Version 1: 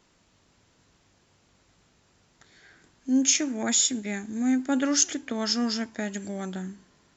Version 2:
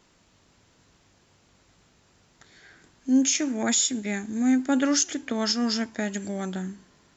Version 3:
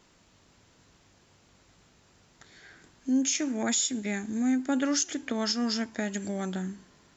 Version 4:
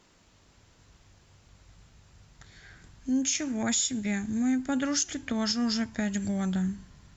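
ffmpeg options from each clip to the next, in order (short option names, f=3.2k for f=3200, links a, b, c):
-af "alimiter=limit=-15dB:level=0:latency=1:release=180,volume=2.5dB"
-af "acompressor=threshold=-31dB:ratio=1.5"
-af "asubboost=boost=8.5:cutoff=120" -ar 48000 -c:a libopus -b:a 96k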